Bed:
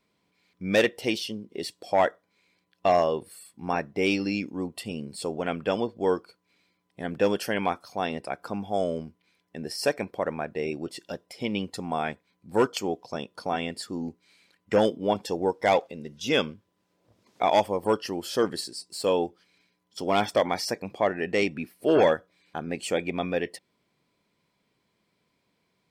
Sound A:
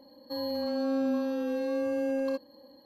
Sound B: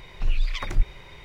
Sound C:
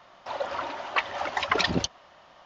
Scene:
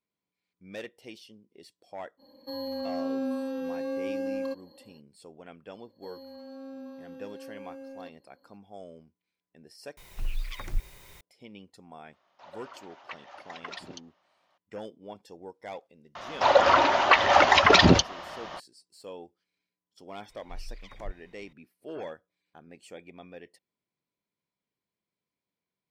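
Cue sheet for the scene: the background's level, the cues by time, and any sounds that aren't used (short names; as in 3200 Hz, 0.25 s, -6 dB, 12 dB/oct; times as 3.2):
bed -18.5 dB
2.17 add A -2.5 dB, fades 0.05 s
5.72 add A -14.5 dB
9.97 replace with B -8.5 dB + requantised 8-bit, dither triangular
12.13 add C -16.5 dB + HPF 230 Hz 6 dB/oct
16.15 add C -5 dB + maximiser +18 dB
20.29 add B -18 dB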